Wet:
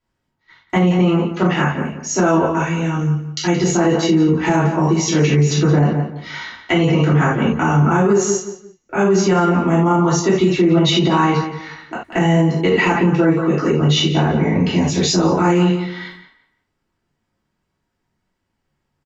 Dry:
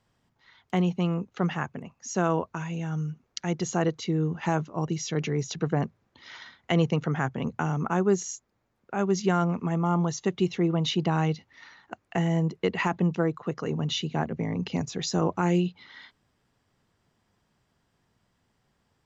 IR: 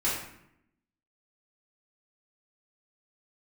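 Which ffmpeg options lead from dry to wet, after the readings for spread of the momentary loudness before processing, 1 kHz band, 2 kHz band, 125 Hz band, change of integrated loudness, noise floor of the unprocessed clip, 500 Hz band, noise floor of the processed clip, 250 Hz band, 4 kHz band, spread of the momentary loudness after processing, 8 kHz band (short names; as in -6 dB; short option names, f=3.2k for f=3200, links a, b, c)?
10 LU, +11.5 dB, +13.0 dB, +11.5 dB, +12.0 dB, -74 dBFS, +12.0 dB, -74 dBFS, +12.5 dB, +13.0 dB, 8 LU, n/a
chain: -filter_complex "[0:a]agate=range=-17dB:threshold=-55dB:ratio=16:detection=peak,asplit=2[a][b];[b]adelay=173,lowpass=f=3.5k:p=1,volume=-11dB,asplit=2[c][d];[d]adelay=173,lowpass=f=3.5k:p=1,volume=0.27,asplit=2[e][f];[f]adelay=173,lowpass=f=3.5k:p=1,volume=0.27[g];[a][c][e][g]amix=inputs=4:normalize=0[h];[1:a]atrim=start_sample=2205,atrim=end_sample=4410[i];[h][i]afir=irnorm=-1:irlink=0,alimiter=level_in=11.5dB:limit=-1dB:release=50:level=0:latency=1,volume=-5.5dB"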